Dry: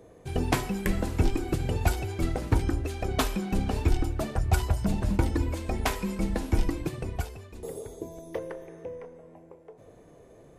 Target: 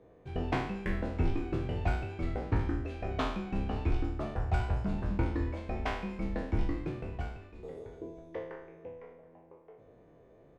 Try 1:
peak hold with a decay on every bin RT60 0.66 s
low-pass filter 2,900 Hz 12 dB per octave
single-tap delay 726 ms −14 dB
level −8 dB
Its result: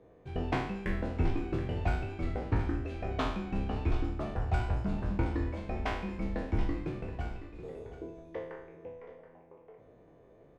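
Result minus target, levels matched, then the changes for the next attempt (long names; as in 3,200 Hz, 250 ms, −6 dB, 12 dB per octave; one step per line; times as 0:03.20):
echo-to-direct +11 dB
change: single-tap delay 726 ms −25 dB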